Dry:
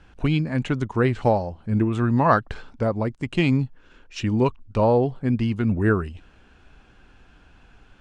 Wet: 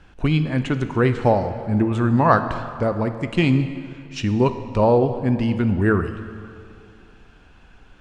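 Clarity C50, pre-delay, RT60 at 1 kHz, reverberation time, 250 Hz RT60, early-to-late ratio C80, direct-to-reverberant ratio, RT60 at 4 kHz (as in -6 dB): 10.0 dB, 5 ms, 2.4 s, 2.4 s, 2.4 s, 11.0 dB, 8.5 dB, 1.9 s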